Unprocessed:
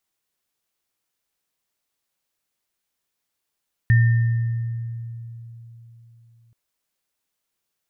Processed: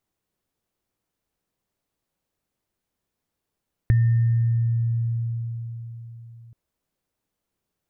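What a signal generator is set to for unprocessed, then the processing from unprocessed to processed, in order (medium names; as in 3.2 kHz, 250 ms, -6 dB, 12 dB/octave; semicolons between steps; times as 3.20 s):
sine partials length 2.63 s, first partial 116 Hz, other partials 1.81 kHz, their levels -11 dB, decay 3.68 s, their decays 1.46 s, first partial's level -11 dB
tilt shelf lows +6 dB, about 1.1 kHz; compression 3:1, threshold -26 dBFS; bass shelf 280 Hz +5 dB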